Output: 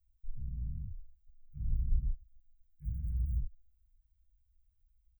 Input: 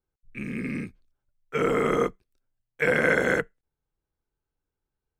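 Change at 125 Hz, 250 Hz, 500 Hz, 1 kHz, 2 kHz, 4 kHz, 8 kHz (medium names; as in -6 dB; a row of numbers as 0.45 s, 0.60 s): -1.0 dB, -23.0 dB, under -40 dB, under -40 dB, under -40 dB, under -40 dB, under -30 dB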